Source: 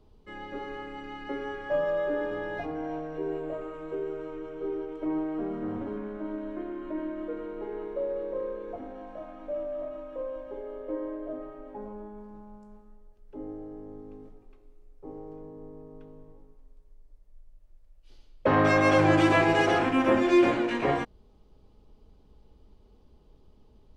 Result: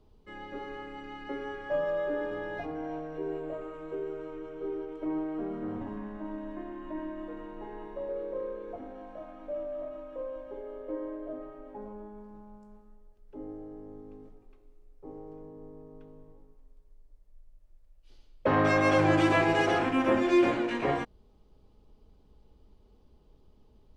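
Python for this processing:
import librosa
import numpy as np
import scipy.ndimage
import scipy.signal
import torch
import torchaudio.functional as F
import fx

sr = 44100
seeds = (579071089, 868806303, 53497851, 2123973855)

y = fx.comb(x, sr, ms=1.1, depth=0.61, at=(5.81, 8.09))
y = y * 10.0 ** (-2.5 / 20.0)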